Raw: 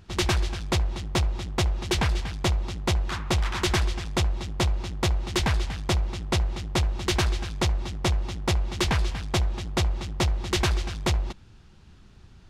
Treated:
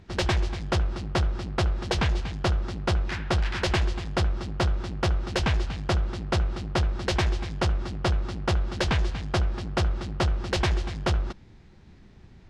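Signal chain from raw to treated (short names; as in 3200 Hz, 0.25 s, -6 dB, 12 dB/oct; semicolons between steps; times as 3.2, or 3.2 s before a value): LPF 2800 Hz 12 dB/oct; formant shift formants +6 st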